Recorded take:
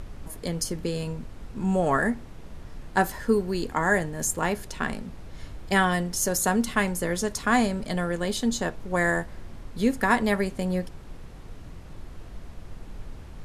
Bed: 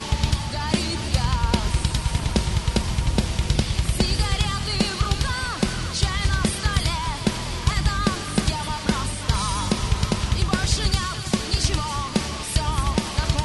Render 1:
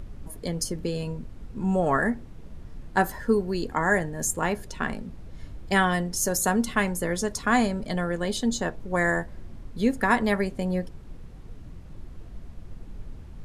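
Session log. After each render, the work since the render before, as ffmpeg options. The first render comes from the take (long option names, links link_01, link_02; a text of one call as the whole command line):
ffmpeg -i in.wav -af "afftdn=noise_reduction=7:noise_floor=-43" out.wav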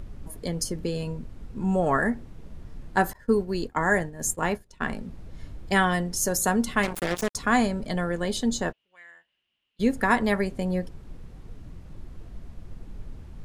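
ffmpeg -i in.wav -filter_complex "[0:a]asettb=1/sr,asplit=3[link_01][link_02][link_03];[link_01]atrim=end=3.134[link_04];[link_02]atrim=start=3.13:end=4.83,asetpts=PTS-STARTPTS,afade=type=in:duration=0.004:curve=qsin,afade=type=out:start_time=1.696:duration=0.004:curve=qsin,agate=range=-33dB:threshold=-28dB:ratio=3:release=100:detection=peak[link_05];[link_03]atrim=start=4.826[link_06];[link_04][link_05]acrossfade=duration=0.004:curve1=hsin:curve2=qsin[link_07];[link_07][link_06]acrossfade=duration=0.004:curve1=qsin:curve2=hsin,asettb=1/sr,asplit=3[link_08][link_09][link_10];[link_08]atrim=end=6.834[link_11];[link_09]atrim=start=6.83:end=7.35,asetpts=PTS-STARTPTS,afade=type=in:duration=0.004:curve=qsin,afade=type=out:start_time=0.516:duration=0.004:curve=qsin,acrusher=bits=3:mix=0:aa=0.5[link_12];[link_10]atrim=start=7.346[link_13];[link_11][link_12]acrossfade=duration=0.004:curve1=hsin:curve2=qsin[link_14];[link_14][link_13]acrossfade=duration=0.004:curve1=qsin:curve2=hsin,asplit=3[link_15][link_16][link_17];[link_15]afade=type=out:start_time=8.71:duration=0.02[link_18];[link_16]bandpass=frequency=2900:width_type=q:width=13,afade=type=in:start_time=8.71:duration=0.02,afade=type=out:start_time=9.79:duration=0.02[link_19];[link_17]afade=type=in:start_time=9.79:duration=0.02[link_20];[link_18][link_19][link_20]amix=inputs=3:normalize=0" out.wav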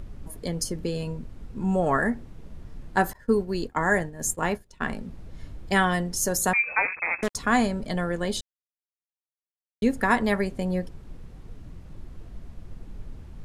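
ffmpeg -i in.wav -filter_complex "[0:a]asettb=1/sr,asplit=3[link_01][link_02][link_03];[link_01]atrim=end=6.534[link_04];[link_02]atrim=start=6.53:end=7.23,asetpts=PTS-STARTPTS,afade=type=in:duration=0.004:curve=qsin,afade=type=out:start_time=0.696:duration=0.004:curve=qsin,lowpass=frequency=2200:width_type=q:width=0.5098,lowpass=frequency=2200:width_type=q:width=0.6013,lowpass=frequency=2200:width_type=q:width=0.9,lowpass=frequency=2200:width_type=q:width=2.563,afreqshift=-2600[link_05];[link_03]atrim=start=7.226[link_06];[link_04][link_05]acrossfade=duration=0.004:curve1=hsin:curve2=qsin[link_07];[link_07][link_06]acrossfade=duration=0.004:curve1=qsin:curve2=hsin,asplit=3[link_08][link_09][link_10];[link_08]atrim=end=8.41,asetpts=PTS-STARTPTS,afade=type=out:start_time=8.406:duration=0.004:curve=hsin[link_11];[link_09]atrim=start=8.41:end=9.82,asetpts=PTS-STARTPTS,volume=0[link_12];[link_10]atrim=start=9.82,asetpts=PTS-STARTPTS,afade=type=in:duration=0.004:curve=hsin[link_13];[link_11][link_12][link_13]concat=n=3:v=0:a=1" out.wav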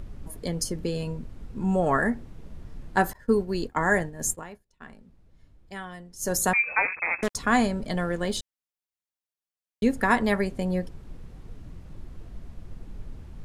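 ffmpeg -i in.wav -filter_complex "[0:a]asettb=1/sr,asplit=3[link_01][link_02][link_03];[link_01]atrim=end=7.924[link_04];[link_02]atrim=start=7.92:end=8.38,asetpts=PTS-STARTPTS,afade=type=in:duration=0.004:curve=qsin,afade=type=out:start_time=0.456:duration=0.004:curve=qsin,aeval=exprs='sgn(val(0))*max(abs(val(0))-0.00168,0)':channel_layout=same[link_05];[link_03]atrim=start=8.376[link_06];[link_04][link_05]acrossfade=duration=0.004:curve1=hsin:curve2=qsin[link_07];[link_07][link_06]acrossfade=duration=0.004:curve1=qsin:curve2=hsin,asplit=3[link_08][link_09][link_10];[link_08]atrim=end=4.44,asetpts=PTS-STARTPTS,afade=type=out:start_time=4.31:duration=0.13:silence=0.149624[link_11];[link_09]atrim=start=4.44:end=6.18,asetpts=PTS-STARTPTS,volume=-16.5dB[link_12];[link_10]atrim=start=6.18,asetpts=PTS-STARTPTS,afade=type=in:duration=0.13:silence=0.149624[link_13];[link_11][link_12][link_13]concat=n=3:v=0:a=1" out.wav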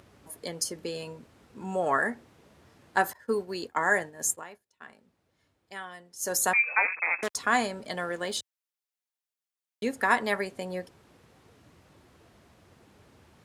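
ffmpeg -i in.wav -af "highpass=frequency=100:width=0.5412,highpass=frequency=100:width=1.3066,equalizer=frequency=150:width=0.61:gain=-14" out.wav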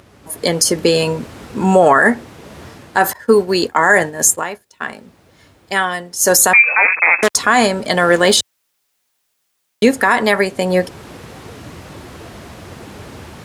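ffmpeg -i in.wav -af "dynaudnorm=framelen=240:gausssize=3:maxgain=14dB,alimiter=level_in=9.5dB:limit=-1dB:release=50:level=0:latency=1" out.wav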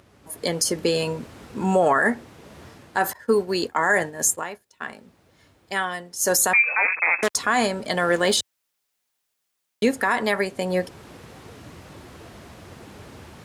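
ffmpeg -i in.wav -af "volume=-8.5dB" out.wav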